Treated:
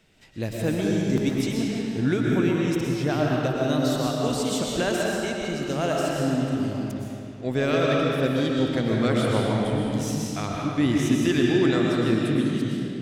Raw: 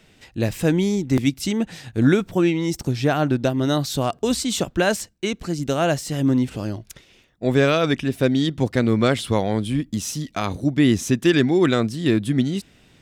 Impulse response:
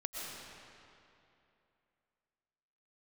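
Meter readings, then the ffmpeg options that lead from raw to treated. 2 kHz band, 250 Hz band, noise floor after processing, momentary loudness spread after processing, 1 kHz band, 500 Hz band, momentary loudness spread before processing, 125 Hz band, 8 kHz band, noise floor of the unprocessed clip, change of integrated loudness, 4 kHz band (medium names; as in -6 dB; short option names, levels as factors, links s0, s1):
-3.0 dB, -3.0 dB, -36 dBFS, 7 LU, -2.5 dB, -2.5 dB, 9 LU, -3.0 dB, -4.5 dB, -55 dBFS, -3.0 dB, -3.5 dB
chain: -filter_complex "[1:a]atrim=start_sample=2205[s0];[0:a][s0]afir=irnorm=-1:irlink=0,volume=0.596"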